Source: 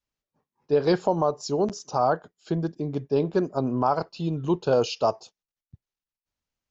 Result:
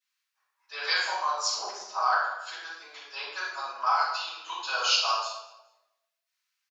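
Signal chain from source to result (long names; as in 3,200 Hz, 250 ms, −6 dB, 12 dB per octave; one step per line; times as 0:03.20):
high-pass filter 1,300 Hz 24 dB per octave
0:01.57–0:02.02: spectral tilt −4.5 dB per octave
repeating echo 209 ms, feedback 29%, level −22 dB
rectangular room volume 380 cubic metres, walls mixed, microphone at 8.4 metres
level −5.5 dB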